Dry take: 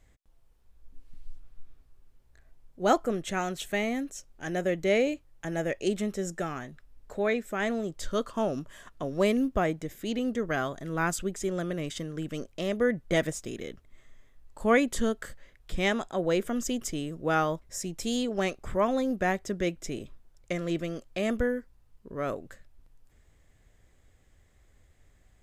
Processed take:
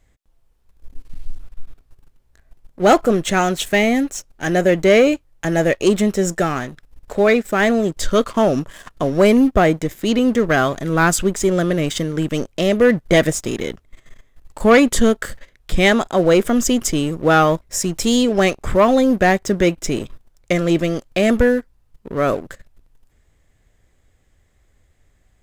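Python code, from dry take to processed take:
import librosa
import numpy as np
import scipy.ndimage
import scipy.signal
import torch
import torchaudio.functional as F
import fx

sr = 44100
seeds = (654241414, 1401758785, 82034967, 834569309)

y = fx.leveller(x, sr, passes=2)
y = y * librosa.db_to_amplitude(6.5)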